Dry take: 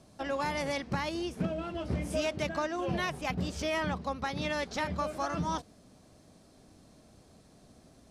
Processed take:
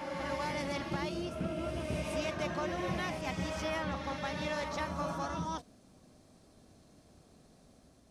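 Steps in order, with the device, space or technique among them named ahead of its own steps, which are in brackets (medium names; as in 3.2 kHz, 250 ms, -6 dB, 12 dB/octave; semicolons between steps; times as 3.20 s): reverse reverb (reverse; reverberation RT60 3.0 s, pre-delay 103 ms, DRR 1.5 dB; reverse); trim -5 dB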